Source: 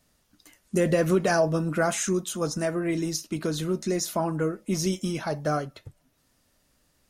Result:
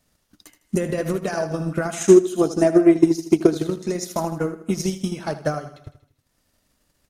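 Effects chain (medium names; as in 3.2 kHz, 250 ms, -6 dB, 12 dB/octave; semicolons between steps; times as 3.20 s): peak limiter -17 dBFS, peak gain reduction 5 dB; 2.06–3.67 s: small resonant body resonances 360/700 Hz, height 13 dB, ringing for 30 ms; on a send: feedback delay 79 ms, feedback 53%, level -8 dB; on the sum: transient shaper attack +9 dB, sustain -7 dB; trim -1 dB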